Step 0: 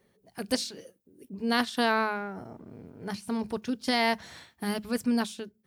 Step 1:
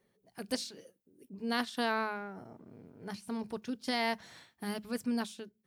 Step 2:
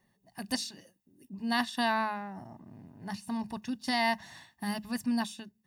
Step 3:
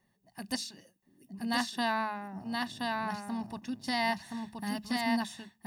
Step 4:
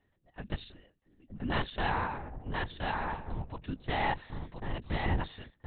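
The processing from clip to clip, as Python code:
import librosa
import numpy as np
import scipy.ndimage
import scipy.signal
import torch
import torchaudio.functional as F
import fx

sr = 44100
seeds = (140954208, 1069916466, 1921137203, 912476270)

y1 = fx.peak_eq(x, sr, hz=70.0, db=-12.5, octaves=0.41)
y1 = F.gain(torch.from_numpy(y1), -6.5).numpy()
y2 = y1 + 0.76 * np.pad(y1, (int(1.1 * sr / 1000.0), 0))[:len(y1)]
y2 = F.gain(torch.from_numpy(y2), 1.5).numpy()
y3 = y2 + 10.0 ** (-3.0 / 20.0) * np.pad(y2, (int(1024 * sr / 1000.0), 0))[:len(y2)]
y3 = F.gain(torch.from_numpy(y3), -2.0).numpy()
y4 = fx.lpc_vocoder(y3, sr, seeds[0], excitation='whisper', order=8)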